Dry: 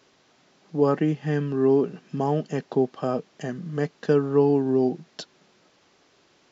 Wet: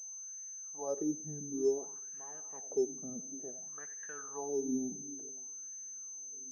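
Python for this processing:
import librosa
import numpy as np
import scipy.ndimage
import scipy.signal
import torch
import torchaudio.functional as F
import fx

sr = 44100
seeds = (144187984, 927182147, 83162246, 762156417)

y = fx.echo_split(x, sr, split_hz=310.0, low_ms=557, high_ms=91, feedback_pct=52, wet_db=-13.0)
y = fx.wah_lfo(y, sr, hz=0.56, low_hz=210.0, high_hz=1800.0, q=5.5)
y = fx.pwm(y, sr, carrier_hz=6200.0)
y = F.gain(torch.from_numpy(y), -7.0).numpy()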